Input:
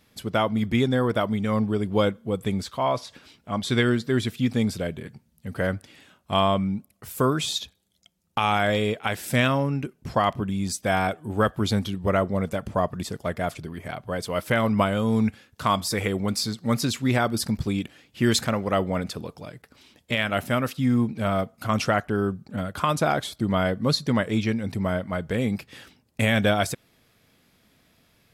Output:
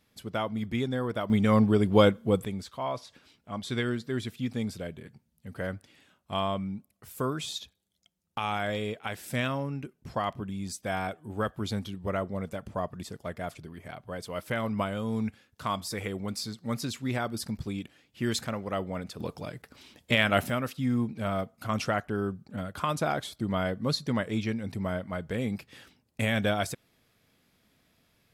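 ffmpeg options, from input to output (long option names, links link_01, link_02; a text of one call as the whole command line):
ffmpeg -i in.wav -af "asetnsamples=nb_out_samples=441:pad=0,asendcmd='1.3 volume volume 2dB;2.45 volume volume -8.5dB;19.2 volume volume 1dB;20.5 volume volume -6dB',volume=-8dB" out.wav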